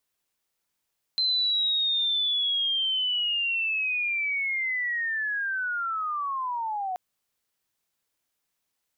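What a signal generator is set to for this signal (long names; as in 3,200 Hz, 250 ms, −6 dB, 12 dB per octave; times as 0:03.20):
glide linear 4,100 Hz → 720 Hz −21.5 dBFS → −27.5 dBFS 5.78 s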